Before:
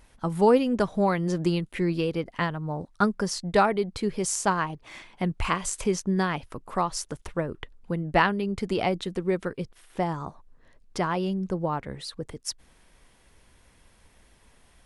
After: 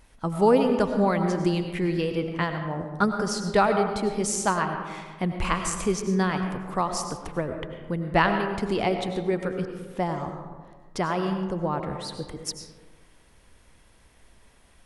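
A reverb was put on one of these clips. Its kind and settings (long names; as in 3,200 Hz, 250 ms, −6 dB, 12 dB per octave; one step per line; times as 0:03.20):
comb and all-pass reverb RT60 1.5 s, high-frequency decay 0.4×, pre-delay 60 ms, DRR 5.5 dB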